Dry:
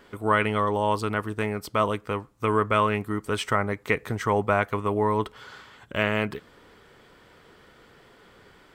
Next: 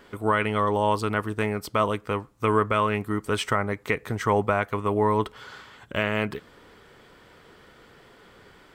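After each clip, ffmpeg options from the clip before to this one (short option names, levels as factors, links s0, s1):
-af "alimiter=limit=0.282:level=0:latency=1:release=375,volume=1.19"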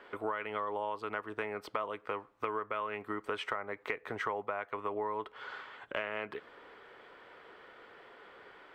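-filter_complex "[0:a]acrossover=split=350 3300:gain=0.126 1 0.112[s0][s1][s2];[s0][s1][s2]amix=inputs=3:normalize=0,acompressor=threshold=0.0224:ratio=6"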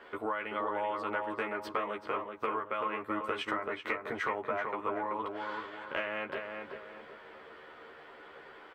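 -filter_complex "[0:a]asplit=2[s0][s1];[s1]adelay=13,volume=0.708[s2];[s0][s2]amix=inputs=2:normalize=0,asplit=2[s3][s4];[s4]adelay=382,lowpass=f=2100:p=1,volume=0.631,asplit=2[s5][s6];[s6]adelay=382,lowpass=f=2100:p=1,volume=0.4,asplit=2[s7][s8];[s8]adelay=382,lowpass=f=2100:p=1,volume=0.4,asplit=2[s9][s10];[s10]adelay=382,lowpass=f=2100:p=1,volume=0.4,asplit=2[s11][s12];[s12]adelay=382,lowpass=f=2100:p=1,volume=0.4[s13];[s3][s5][s7][s9][s11][s13]amix=inputs=6:normalize=0"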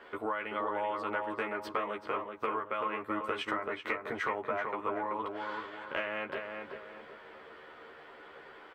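-af anull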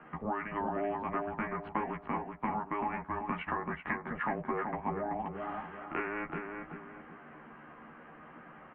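-af "highpass=f=280:t=q:w=0.5412,highpass=f=280:t=q:w=1.307,lowpass=f=2700:t=q:w=0.5176,lowpass=f=2700:t=q:w=0.7071,lowpass=f=2700:t=q:w=1.932,afreqshift=-230,equalizer=f=86:w=2.4:g=-10"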